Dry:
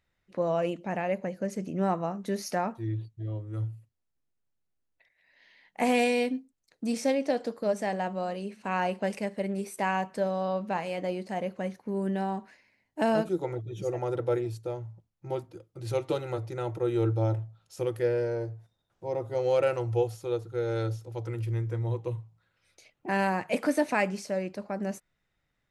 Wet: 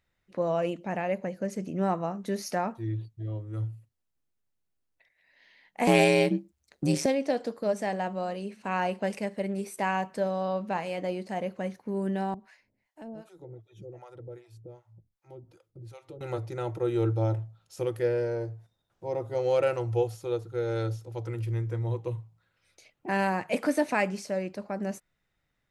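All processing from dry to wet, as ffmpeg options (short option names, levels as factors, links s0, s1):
-filter_complex "[0:a]asettb=1/sr,asplit=3[s0][s1][s2];[s0]atrim=end=5.874[s3];[s1]atrim=start=5.87:end=7.06,asetpts=PTS-STARTPTS,afade=t=in:d=0.004:c=qsin,afade=t=out:st=1.186:d=0.004:c=qsin,acontrast=87,aeval=exprs='val(0)*sin(2*PI*71*n/s)':c=same[s4];[s2]atrim=start=7.056[s5];[s3][s4]acrossfade=d=0.004:c1=hsin:c2=qsin[s6];[s6][s5]acrossfade=d=0.004:c1=qsin:c2=hsin,asettb=1/sr,asplit=3[s7][s8][s9];[s7]atrim=end=12.344[s10];[s8]atrim=start=12.34:end=16.21,asetpts=PTS-STARTPTS,afade=t=in:d=0.004:c=qsin,afade=t=out:st=3.866:d=0.004:c=qsin,lowshelf=f=80:g=10.5,acompressor=threshold=0.00501:ratio=2:attack=3.2:release=140:knee=1:detection=peak,acrossover=split=600[s11][s12];[s11]aeval=exprs='val(0)*(1-1/2+1/2*cos(2*PI*2.6*n/s))':c=same[s13];[s12]aeval=exprs='val(0)*(1-1/2-1/2*cos(2*PI*2.6*n/s))':c=same[s14];[s13][s14]amix=inputs=2:normalize=0[s15];[s9]atrim=start=16.206[s16];[s10][s15]acrossfade=d=0.004:c1=hsin:c2=qsin[s17];[s17][s16]acrossfade=d=0.004:c1=qsin:c2=hsin"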